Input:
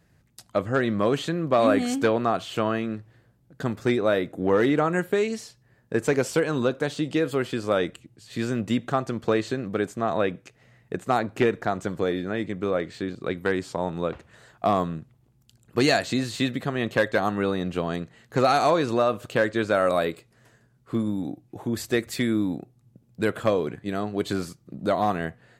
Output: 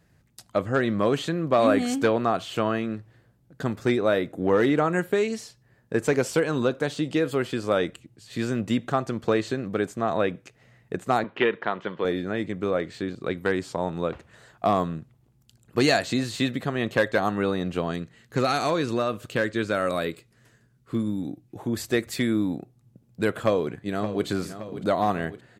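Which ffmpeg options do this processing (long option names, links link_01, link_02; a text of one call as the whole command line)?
ffmpeg -i in.wav -filter_complex "[0:a]asettb=1/sr,asplit=3[link_01][link_02][link_03];[link_01]atrim=end=11.244[link_04];[link_02]atrim=start=11.24:end=12.05,asetpts=PTS-STARTPTS,afade=type=in:duration=0.004:curve=qsin,afade=type=out:start_time=0.806:duration=0.004:curve=qsin,highpass=230,equalizer=frequency=280:width_type=q:width=4:gain=-6,equalizer=frequency=710:width_type=q:width=4:gain=-5,equalizer=frequency=1000:width_type=q:width=4:gain=6,equalizer=frequency=1900:width_type=q:width=4:gain=4,equalizer=frequency=3100:width_type=q:width=4:gain=9,lowpass=frequency=3700:width=0.5412,lowpass=frequency=3700:width=1.3066[link_05];[link_03]atrim=start=12.046[link_06];[link_04][link_05]acrossfade=duration=0.004:curve1=hsin:curve2=qsin[link_07];[link_07][link_06]acrossfade=duration=0.004:curve1=qsin:curve2=hsin,asettb=1/sr,asplit=3[link_08][link_09][link_10];[link_08]atrim=end=17.914[link_11];[link_09]atrim=start=17.91:end=21.57,asetpts=PTS-STARTPTS,afade=type=in:duration=0.004:curve=qsin,afade=type=out:start_time=3.656:duration=0.004:curve=qsin,equalizer=frequency=750:width=1.1:gain=-6.5[link_12];[link_10]atrim=start=21.566[link_13];[link_11][link_12]acrossfade=duration=0.004:curve1=hsin:curve2=qsin[link_14];[link_14][link_13]acrossfade=duration=0.004:curve1=qsin:curve2=hsin,asplit=2[link_15][link_16];[link_16]afade=type=in:start_time=23.36:duration=0.01,afade=type=out:start_time=24.26:duration=0.01,aecho=0:1:570|1140|1710|2280|2850|3420:0.251189|0.138154|0.0759846|0.0417915|0.0229853|0.0126419[link_17];[link_15][link_17]amix=inputs=2:normalize=0" out.wav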